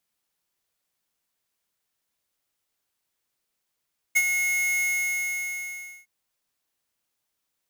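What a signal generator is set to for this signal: ADSR square 2170 Hz, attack 17 ms, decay 50 ms, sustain -6.5 dB, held 0.66 s, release 1.25 s -18 dBFS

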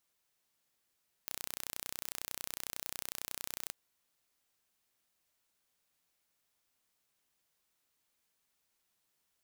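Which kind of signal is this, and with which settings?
pulse train 31/s, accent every 0, -12 dBFS 2.45 s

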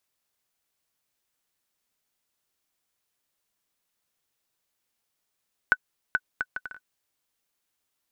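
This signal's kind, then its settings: bouncing ball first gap 0.43 s, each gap 0.6, 1500 Hz, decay 48 ms -7 dBFS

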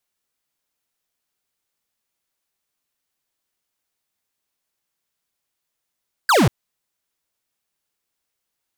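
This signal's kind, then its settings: laser zap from 1700 Hz, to 99 Hz, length 0.19 s square, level -14 dB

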